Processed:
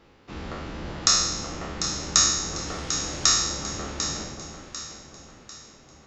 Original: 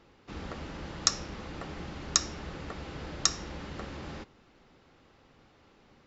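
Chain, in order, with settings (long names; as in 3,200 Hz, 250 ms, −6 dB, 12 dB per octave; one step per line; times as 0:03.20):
peak hold with a decay on every bin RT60 1.01 s
0:02.66–0:03.43: noise in a band 840–6,100 Hz −47 dBFS
delay that swaps between a low-pass and a high-pass 373 ms, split 960 Hz, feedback 65%, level −5.5 dB
level +2 dB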